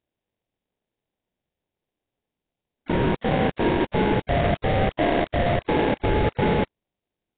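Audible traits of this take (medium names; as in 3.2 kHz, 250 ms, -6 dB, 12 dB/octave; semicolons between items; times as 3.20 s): aliases and images of a low sample rate 1.3 kHz, jitter 20%; Nellymoser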